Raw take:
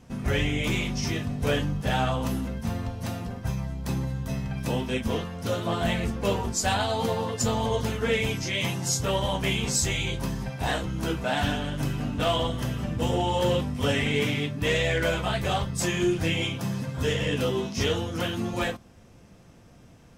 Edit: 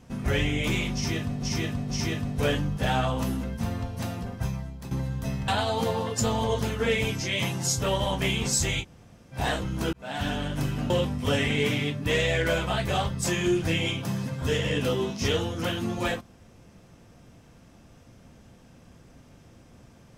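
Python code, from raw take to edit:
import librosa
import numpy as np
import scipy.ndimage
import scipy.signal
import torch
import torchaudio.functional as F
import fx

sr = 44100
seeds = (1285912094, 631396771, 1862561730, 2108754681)

y = fx.edit(x, sr, fx.repeat(start_s=0.94, length_s=0.48, count=3),
    fx.fade_out_to(start_s=3.49, length_s=0.46, floor_db=-12.5),
    fx.cut(start_s=4.52, length_s=2.18),
    fx.room_tone_fill(start_s=10.04, length_s=0.52, crossfade_s=0.06),
    fx.fade_in_span(start_s=11.15, length_s=0.45),
    fx.cut(start_s=12.12, length_s=1.34), tone=tone)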